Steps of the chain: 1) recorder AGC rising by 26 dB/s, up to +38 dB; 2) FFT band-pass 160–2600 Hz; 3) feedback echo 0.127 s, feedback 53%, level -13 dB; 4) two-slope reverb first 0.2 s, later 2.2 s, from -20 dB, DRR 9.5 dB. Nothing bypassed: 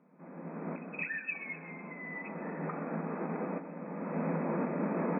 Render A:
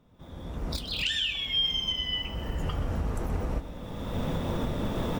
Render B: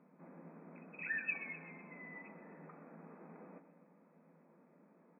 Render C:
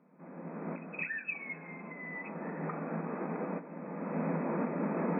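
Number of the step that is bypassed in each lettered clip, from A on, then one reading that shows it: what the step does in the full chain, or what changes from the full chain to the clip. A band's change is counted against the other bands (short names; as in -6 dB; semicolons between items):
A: 2, 125 Hz band +8.5 dB; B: 1, crest factor change +7.0 dB; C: 3, echo-to-direct -7.0 dB to -9.5 dB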